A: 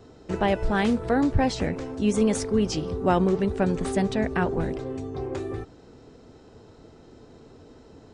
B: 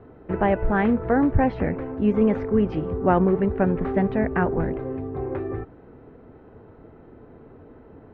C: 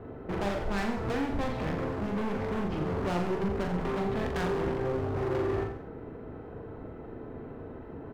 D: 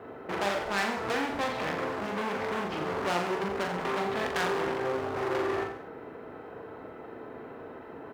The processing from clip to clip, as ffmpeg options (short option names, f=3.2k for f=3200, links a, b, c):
-af "lowpass=f=2.1k:w=0.5412,lowpass=f=2.1k:w=1.3066,volume=2.5dB"
-filter_complex "[0:a]acompressor=threshold=-24dB:ratio=4,volume=33dB,asoftclip=hard,volume=-33dB,asplit=2[a][b];[b]aecho=0:1:40|84|132.4|185.6|244.2:0.631|0.398|0.251|0.158|0.1[c];[a][c]amix=inputs=2:normalize=0,volume=2.5dB"
-af "highpass=f=900:p=1,volume=7.5dB"